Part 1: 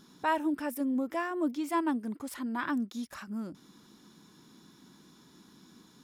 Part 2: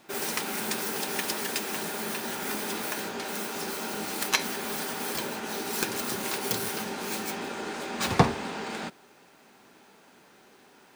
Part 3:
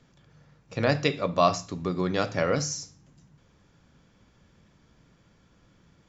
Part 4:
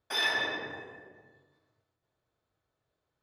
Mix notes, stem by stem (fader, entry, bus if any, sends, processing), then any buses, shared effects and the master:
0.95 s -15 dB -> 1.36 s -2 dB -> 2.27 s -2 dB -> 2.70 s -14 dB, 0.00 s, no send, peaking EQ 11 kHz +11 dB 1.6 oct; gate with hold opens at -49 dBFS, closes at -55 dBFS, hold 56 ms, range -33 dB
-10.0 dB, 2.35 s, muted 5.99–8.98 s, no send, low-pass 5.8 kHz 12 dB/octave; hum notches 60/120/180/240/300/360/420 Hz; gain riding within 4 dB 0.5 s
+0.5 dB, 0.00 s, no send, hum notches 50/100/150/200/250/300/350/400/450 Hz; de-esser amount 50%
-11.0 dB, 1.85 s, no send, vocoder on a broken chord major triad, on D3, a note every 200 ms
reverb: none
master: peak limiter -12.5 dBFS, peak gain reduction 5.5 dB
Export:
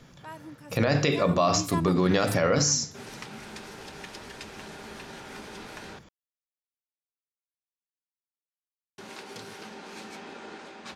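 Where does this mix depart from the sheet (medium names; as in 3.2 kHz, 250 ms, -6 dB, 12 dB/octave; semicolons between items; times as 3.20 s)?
stem 2: entry 2.35 s -> 2.85 s; stem 3 +0.5 dB -> +9.0 dB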